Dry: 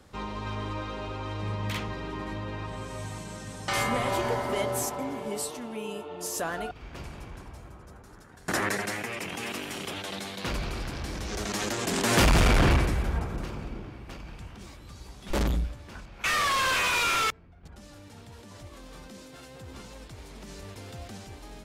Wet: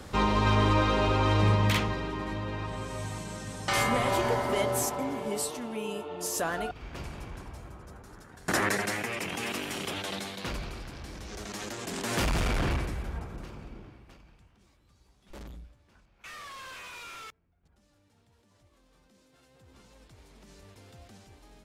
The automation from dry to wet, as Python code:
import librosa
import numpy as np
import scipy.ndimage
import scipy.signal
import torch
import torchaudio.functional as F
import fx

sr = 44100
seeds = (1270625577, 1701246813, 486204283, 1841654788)

y = fx.gain(x, sr, db=fx.line((1.4, 10.5), (2.15, 1.0), (10.12, 1.0), (10.84, -7.5), (13.87, -7.5), (14.51, -18.5), (19.0, -18.5), (20.11, -10.0)))